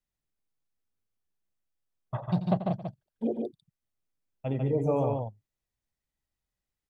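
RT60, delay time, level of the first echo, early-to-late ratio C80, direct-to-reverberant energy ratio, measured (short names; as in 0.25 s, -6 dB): none, 88 ms, -12.5 dB, none, none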